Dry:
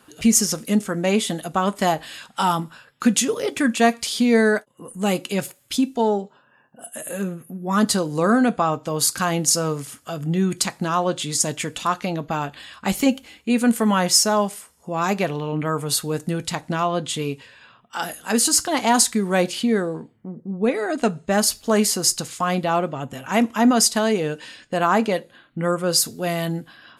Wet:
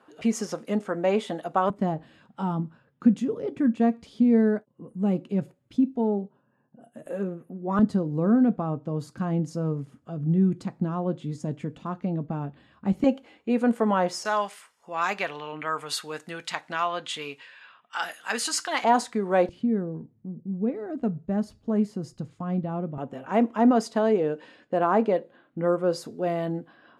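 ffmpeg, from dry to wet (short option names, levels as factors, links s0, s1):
-af "asetnsamples=n=441:p=0,asendcmd='1.7 bandpass f 170;7.06 bandpass f 430;7.79 bandpass f 170;13.04 bandpass f 550;14.25 bandpass f 1800;18.84 bandpass f 620;19.49 bandpass f 120;22.98 bandpass f 440',bandpass=f=670:t=q:w=0.82:csg=0"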